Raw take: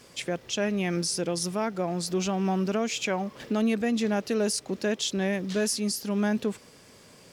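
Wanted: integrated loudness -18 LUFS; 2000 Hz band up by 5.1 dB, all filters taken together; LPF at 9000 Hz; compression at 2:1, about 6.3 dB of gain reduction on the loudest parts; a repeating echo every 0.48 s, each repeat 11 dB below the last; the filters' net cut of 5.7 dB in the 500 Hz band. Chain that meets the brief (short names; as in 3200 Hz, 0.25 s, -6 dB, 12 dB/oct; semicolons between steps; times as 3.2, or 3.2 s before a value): LPF 9000 Hz; bell 500 Hz -8 dB; bell 2000 Hz +7 dB; compressor 2:1, threshold -34 dBFS; feedback echo 0.48 s, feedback 28%, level -11 dB; gain +15.5 dB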